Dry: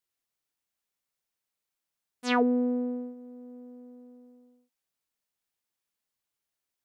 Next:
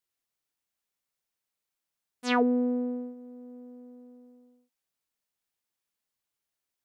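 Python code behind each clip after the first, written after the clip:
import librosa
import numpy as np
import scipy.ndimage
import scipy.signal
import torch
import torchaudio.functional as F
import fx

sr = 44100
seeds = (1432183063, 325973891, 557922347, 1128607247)

y = x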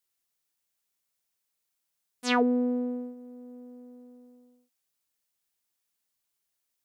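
y = fx.high_shelf(x, sr, hz=4100.0, db=7.0)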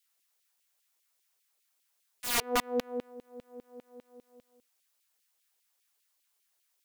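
y = fx.filter_lfo_highpass(x, sr, shape='saw_down', hz=5.0, low_hz=350.0, high_hz=3000.0, q=1.5)
y = (np.mod(10.0 ** (25.5 / 20.0) * y + 1.0, 2.0) - 1.0) / 10.0 ** (25.5 / 20.0)
y = F.gain(torch.from_numpy(y), 4.5).numpy()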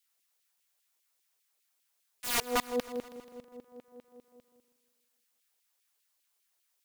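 y = fx.echo_feedback(x, sr, ms=161, feedback_pct=59, wet_db=-16.5)
y = F.gain(torch.from_numpy(y), -1.0).numpy()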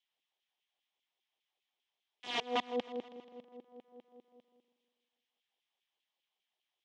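y = fx.cabinet(x, sr, low_hz=190.0, low_slope=12, high_hz=4600.0, hz=(210.0, 350.0, 780.0, 1400.0, 3200.0, 4500.0), db=(3, 4, 6, -9, 8, -7))
y = F.gain(torch.from_numpy(y), -4.5).numpy()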